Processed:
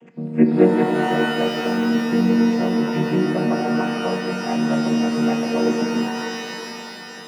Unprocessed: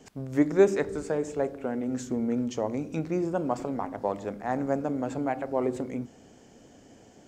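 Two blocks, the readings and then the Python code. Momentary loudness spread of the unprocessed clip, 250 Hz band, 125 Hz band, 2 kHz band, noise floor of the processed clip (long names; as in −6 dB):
9 LU, +11.5 dB, +10.0 dB, +14.0 dB, −36 dBFS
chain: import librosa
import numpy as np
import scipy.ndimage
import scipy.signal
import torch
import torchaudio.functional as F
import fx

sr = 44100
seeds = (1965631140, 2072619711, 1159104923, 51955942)

y = fx.chord_vocoder(x, sr, chord='minor triad', root=51)
y = fx.high_shelf_res(y, sr, hz=3400.0, db=-9.0, q=3.0)
y = fx.rev_shimmer(y, sr, seeds[0], rt60_s=3.1, semitones=12, shimmer_db=-2, drr_db=4.5)
y = y * 10.0 ** (6.5 / 20.0)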